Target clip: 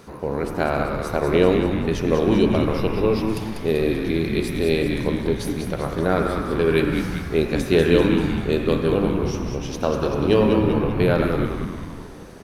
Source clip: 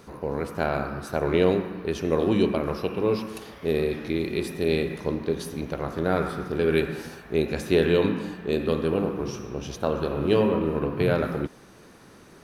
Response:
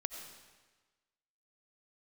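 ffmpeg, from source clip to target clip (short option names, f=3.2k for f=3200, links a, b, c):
-filter_complex "[0:a]asplit=9[a][b][c][d][e][f][g][h][i];[b]adelay=194,afreqshift=-110,volume=-6dB[j];[c]adelay=388,afreqshift=-220,volume=-10.6dB[k];[d]adelay=582,afreqshift=-330,volume=-15.2dB[l];[e]adelay=776,afreqshift=-440,volume=-19.7dB[m];[f]adelay=970,afreqshift=-550,volume=-24.3dB[n];[g]adelay=1164,afreqshift=-660,volume=-28.9dB[o];[h]adelay=1358,afreqshift=-770,volume=-33.5dB[p];[i]adelay=1552,afreqshift=-880,volume=-38.1dB[q];[a][j][k][l][m][n][o][p][q]amix=inputs=9:normalize=0,asplit=2[r][s];[1:a]atrim=start_sample=2205,asetrate=38367,aresample=44100[t];[s][t]afir=irnorm=-1:irlink=0,volume=-5.5dB[u];[r][u]amix=inputs=2:normalize=0"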